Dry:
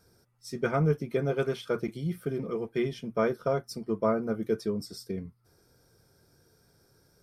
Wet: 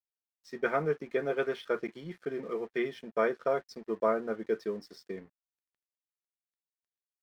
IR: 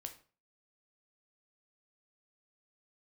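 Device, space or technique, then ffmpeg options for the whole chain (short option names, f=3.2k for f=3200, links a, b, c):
pocket radio on a weak battery: -af "highpass=340,lowpass=3.8k,aeval=exprs='sgn(val(0))*max(abs(val(0))-0.00119,0)':c=same,equalizer=f=1.8k:t=o:w=0.27:g=8"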